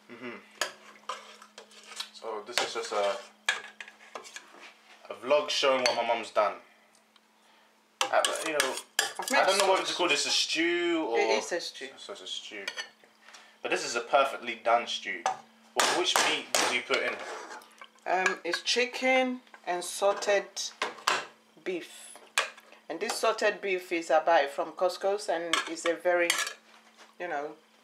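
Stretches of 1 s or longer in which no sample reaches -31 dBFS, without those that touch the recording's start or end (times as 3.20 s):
6.52–8.01 s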